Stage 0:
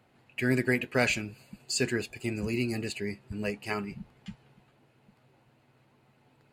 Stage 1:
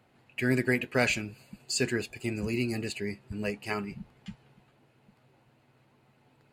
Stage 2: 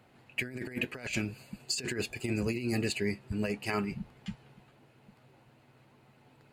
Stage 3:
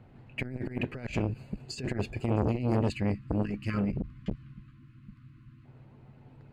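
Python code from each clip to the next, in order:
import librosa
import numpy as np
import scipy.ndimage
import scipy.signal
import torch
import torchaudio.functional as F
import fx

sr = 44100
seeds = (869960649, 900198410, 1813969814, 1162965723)

y1 = x
y2 = fx.over_compress(y1, sr, threshold_db=-32.0, ratio=-0.5)
y3 = fx.spec_erase(y2, sr, start_s=2.9, length_s=2.75, low_hz=340.0, high_hz=1000.0)
y3 = fx.riaa(y3, sr, side='playback')
y3 = fx.transformer_sat(y3, sr, knee_hz=540.0)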